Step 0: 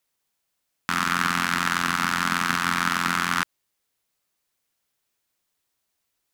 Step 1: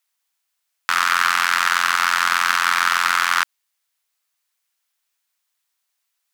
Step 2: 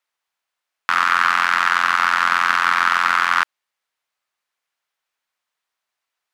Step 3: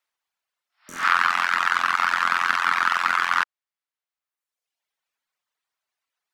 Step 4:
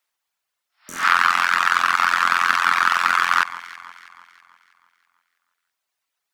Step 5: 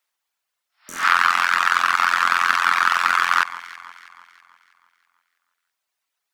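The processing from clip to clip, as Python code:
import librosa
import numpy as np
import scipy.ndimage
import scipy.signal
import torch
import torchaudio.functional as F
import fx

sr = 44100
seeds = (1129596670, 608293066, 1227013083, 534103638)

y1 = scipy.signal.sosfilt(scipy.signal.butter(2, 950.0, 'highpass', fs=sr, output='sos'), x)
y1 = fx.leveller(y1, sr, passes=1)
y1 = F.gain(torch.from_numpy(y1), 4.0).numpy()
y2 = fx.lowpass(y1, sr, hz=1500.0, slope=6)
y2 = F.gain(torch.from_numpy(y2), 4.5).numpy()
y3 = fx.spec_repair(y2, sr, seeds[0], start_s=0.71, length_s=0.33, low_hz=620.0, high_hz=5600.0, source='both')
y3 = fx.dereverb_blind(y3, sr, rt60_s=1.2)
y3 = F.gain(torch.from_numpy(y3), -1.0).numpy()
y4 = fx.high_shelf(y3, sr, hz=5600.0, db=5.5)
y4 = fx.echo_alternate(y4, sr, ms=162, hz=1500.0, feedback_pct=67, wet_db=-13.0)
y4 = F.gain(torch.from_numpy(y4), 2.5).numpy()
y5 = fx.peak_eq(y4, sr, hz=120.0, db=-4.0, octaves=2.5)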